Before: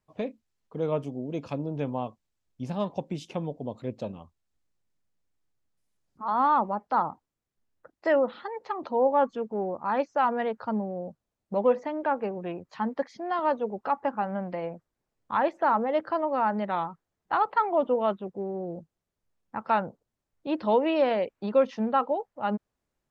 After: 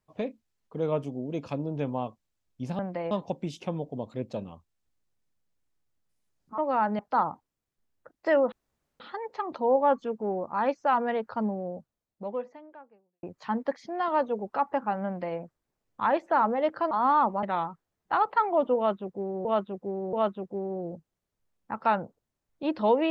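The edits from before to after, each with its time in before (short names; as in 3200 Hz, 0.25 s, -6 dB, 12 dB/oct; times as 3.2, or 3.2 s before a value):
6.26–6.78 swap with 16.22–16.63
8.31 insert room tone 0.48 s
10.96–12.54 fade out quadratic
14.37–14.69 copy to 2.79
17.97–18.65 loop, 3 plays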